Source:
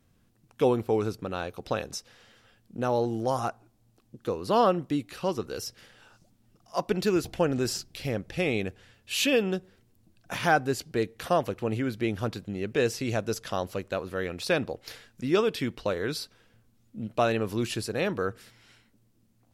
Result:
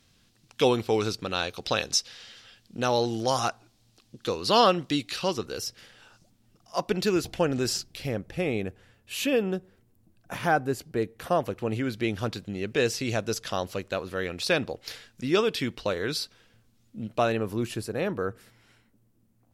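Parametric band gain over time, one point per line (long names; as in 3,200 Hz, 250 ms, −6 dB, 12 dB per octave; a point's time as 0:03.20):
parametric band 4,300 Hz 2.2 octaves
0:05.12 +15 dB
0:05.57 +4 dB
0:07.77 +4 dB
0:08.38 −6 dB
0:11.16 −6 dB
0:11.94 +5 dB
0:17.03 +5 dB
0:17.54 −6 dB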